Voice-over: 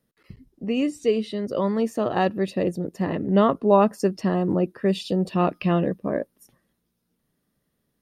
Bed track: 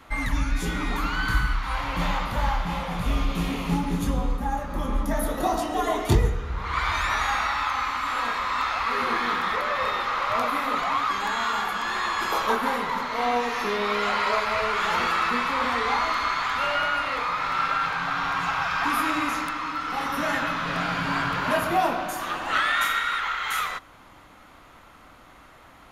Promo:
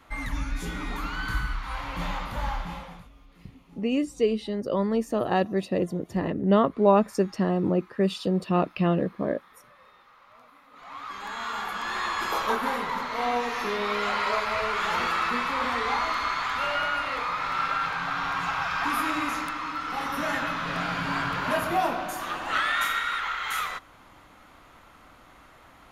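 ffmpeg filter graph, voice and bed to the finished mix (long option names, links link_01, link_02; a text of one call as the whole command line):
ffmpeg -i stem1.wav -i stem2.wav -filter_complex "[0:a]adelay=3150,volume=-2dB[link_01];[1:a]volume=21.5dB,afade=type=out:start_time=2.6:duration=0.49:silence=0.0630957,afade=type=in:start_time=10.72:duration=1.29:silence=0.0446684[link_02];[link_01][link_02]amix=inputs=2:normalize=0" out.wav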